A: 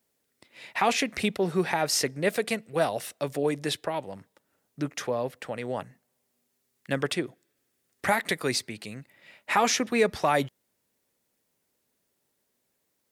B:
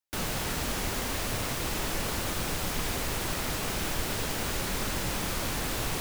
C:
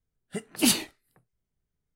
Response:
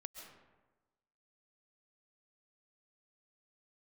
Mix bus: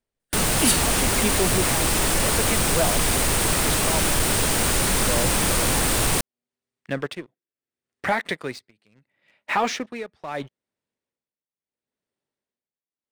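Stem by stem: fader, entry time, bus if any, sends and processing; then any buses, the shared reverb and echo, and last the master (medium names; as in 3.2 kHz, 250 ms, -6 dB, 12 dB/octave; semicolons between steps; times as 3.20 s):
-4.5 dB, 0.00 s, no send, low-pass 4.1 kHz; tremolo 0.74 Hz, depth 86%
+2.5 dB, 0.20 s, no send, none
-5.0 dB, 0.00 s, no send, none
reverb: none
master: peaking EQ 8.9 kHz +10 dB 0.32 oct; waveshaping leveller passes 2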